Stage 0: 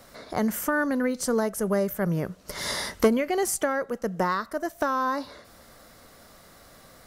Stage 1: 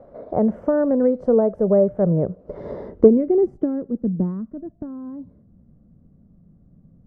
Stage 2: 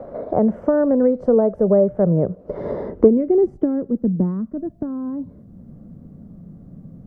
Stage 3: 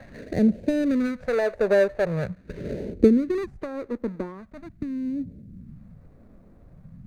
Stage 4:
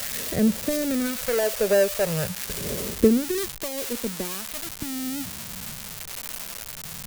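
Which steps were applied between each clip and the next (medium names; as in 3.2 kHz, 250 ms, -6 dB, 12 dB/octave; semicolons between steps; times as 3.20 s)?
dynamic bell 110 Hz, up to +5 dB, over -42 dBFS, Q 0.81; low-pass sweep 580 Hz -> 180 Hz, 2.18–5.03 s; trim +3 dB
three bands compressed up and down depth 40%; trim +2 dB
median filter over 41 samples; phase shifter stages 2, 0.43 Hz, lowest notch 150–1100 Hz
zero-crossing glitches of -15.5 dBFS; peaking EQ 300 Hz -5 dB 0.46 oct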